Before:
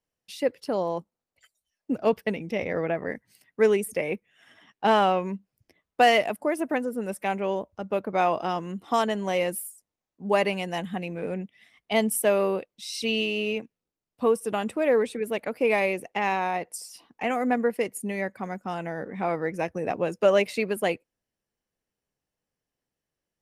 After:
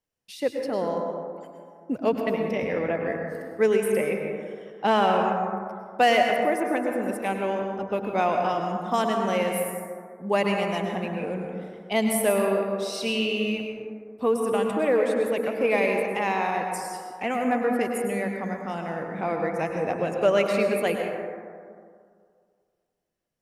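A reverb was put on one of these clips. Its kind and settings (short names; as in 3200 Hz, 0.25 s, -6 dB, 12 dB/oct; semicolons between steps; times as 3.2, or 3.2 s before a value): plate-style reverb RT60 2.1 s, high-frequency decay 0.3×, pre-delay 90 ms, DRR 2 dB; gain -1 dB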